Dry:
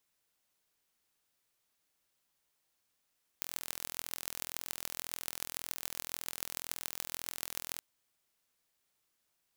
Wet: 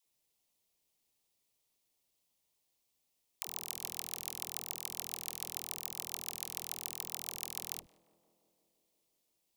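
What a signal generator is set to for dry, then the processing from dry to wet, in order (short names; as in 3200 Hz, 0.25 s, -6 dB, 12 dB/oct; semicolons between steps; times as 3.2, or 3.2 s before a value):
pulse train 41.9/s, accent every 6, -7.5 dBFS 4.38 s
bell 1500 Hz -13.5 dB 0.7 oct; dispersion lows, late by 72 ms, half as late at 410 Hz; tape echo 0.171 s, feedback 85%, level -16.5 dB, low-pass 1200 Hz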